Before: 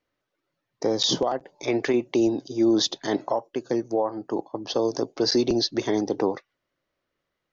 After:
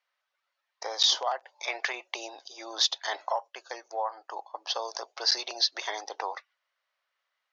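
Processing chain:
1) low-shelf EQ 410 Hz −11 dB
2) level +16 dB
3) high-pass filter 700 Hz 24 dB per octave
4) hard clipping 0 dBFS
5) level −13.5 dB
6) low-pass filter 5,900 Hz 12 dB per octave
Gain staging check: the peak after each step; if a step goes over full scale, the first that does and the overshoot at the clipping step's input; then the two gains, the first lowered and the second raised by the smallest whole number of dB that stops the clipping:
−11.0, +5.0, +5.0, 0.0, −13.5, −13.0 dBFS
step 2, 5.0 dB
step 2 +11 dB, step 5 −8.5 dB

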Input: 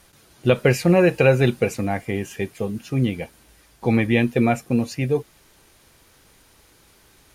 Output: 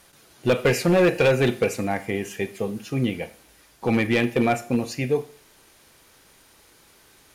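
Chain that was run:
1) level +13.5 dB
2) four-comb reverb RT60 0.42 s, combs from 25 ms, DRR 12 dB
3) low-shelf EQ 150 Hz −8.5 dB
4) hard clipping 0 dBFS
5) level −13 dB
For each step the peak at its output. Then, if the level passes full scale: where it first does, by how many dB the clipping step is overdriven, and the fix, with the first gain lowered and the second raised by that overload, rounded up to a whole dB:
+10.0, +10.0, +9.5, 0.0, −13.0 dBFS
step 1, 9.5 dB
step 1 +3.5 dB, step 5 −3 dB

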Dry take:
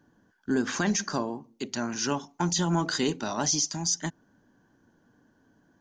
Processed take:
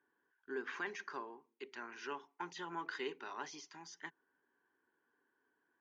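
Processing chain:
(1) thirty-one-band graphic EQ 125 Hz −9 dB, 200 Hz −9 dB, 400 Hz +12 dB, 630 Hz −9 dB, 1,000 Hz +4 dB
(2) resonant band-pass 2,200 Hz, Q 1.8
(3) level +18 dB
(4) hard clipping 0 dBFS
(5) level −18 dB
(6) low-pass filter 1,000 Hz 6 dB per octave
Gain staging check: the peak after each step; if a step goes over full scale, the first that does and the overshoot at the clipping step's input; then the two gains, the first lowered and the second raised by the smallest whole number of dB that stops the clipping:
−11.0, −22.0, −4.0, −4.0, −22.0, −27.5 dBFS
no step passes full scale

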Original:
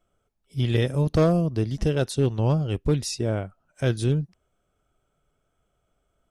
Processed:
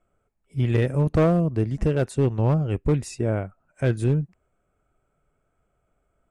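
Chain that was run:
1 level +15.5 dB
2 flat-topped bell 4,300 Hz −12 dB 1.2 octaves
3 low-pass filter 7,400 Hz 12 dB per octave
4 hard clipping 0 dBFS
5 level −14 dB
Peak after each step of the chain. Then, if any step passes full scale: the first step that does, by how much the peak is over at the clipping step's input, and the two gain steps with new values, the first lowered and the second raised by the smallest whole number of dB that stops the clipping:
+4.0, +3.5, +3.5, 0.0, −14.0 dBFS
step 1, 3.5 dB
step 1 +11.5 dB, step 5 −10 dB

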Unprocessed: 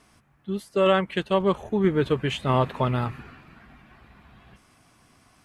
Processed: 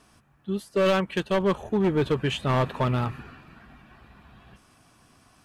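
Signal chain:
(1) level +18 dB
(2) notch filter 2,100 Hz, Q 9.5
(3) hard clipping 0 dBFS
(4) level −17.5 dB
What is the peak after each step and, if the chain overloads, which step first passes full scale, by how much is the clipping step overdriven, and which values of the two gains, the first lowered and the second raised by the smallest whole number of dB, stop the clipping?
+10.0, +9.5, 0.0, −17.5 dBFS
step 1, 9.5 dB
step 1 +8 dB, step 4 −7.5 dB

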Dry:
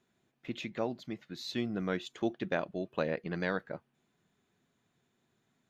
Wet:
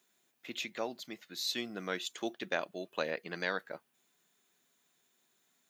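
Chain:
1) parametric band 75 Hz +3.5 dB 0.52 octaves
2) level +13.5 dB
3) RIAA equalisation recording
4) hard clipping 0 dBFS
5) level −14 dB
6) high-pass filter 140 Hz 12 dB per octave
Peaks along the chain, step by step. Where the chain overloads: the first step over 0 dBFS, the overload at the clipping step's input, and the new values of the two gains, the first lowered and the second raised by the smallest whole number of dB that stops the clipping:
−17.5, −4.0, −2.5, −2.5, −16.5, −16.0 dBFS
no step passes full scale

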